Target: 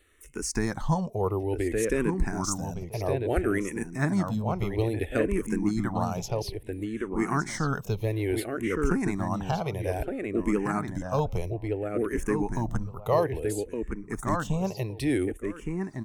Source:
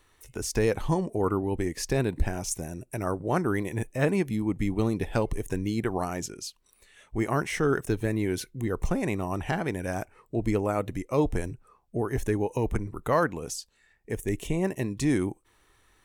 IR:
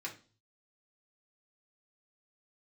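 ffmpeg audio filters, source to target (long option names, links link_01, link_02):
-filter_complex "[0:a]asplit=2[link_01][link_02];[link_02]adelay=1165,lowpass=frequency=2500:poles=1,volume=-4dB,asplit=2[link_03][link_04];[link_04]adelay=1165,lowpass=frequency=2500:poles=1,volume=0.17,asplit=2[link_05][link_06];[link_06]adelay=1165,lowpass=frequency=2500:poles=1,volume=0.17[link_07];[link_01][link_03][link_05][link_07]amix=inputs=4:normalize=0,asplit=2[link_08][link_09];[link_09]afreqshift=-0.59[link_10];[link_08][link_10]amix=inputs=2:normalize=1,volume=2dB"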